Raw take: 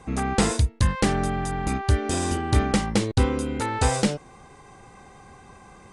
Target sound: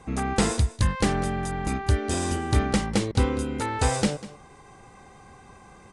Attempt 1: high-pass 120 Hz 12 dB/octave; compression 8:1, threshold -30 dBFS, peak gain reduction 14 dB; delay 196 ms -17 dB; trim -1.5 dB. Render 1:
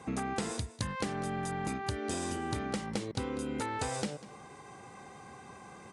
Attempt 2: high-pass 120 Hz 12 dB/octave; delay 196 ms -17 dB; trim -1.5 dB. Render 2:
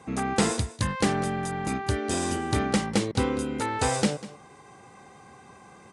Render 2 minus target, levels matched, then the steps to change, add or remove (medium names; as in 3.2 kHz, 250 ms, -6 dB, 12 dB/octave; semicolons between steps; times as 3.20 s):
125 Hz band -3.0 dB
remove: high-pass 120 Hz 12 dB/octave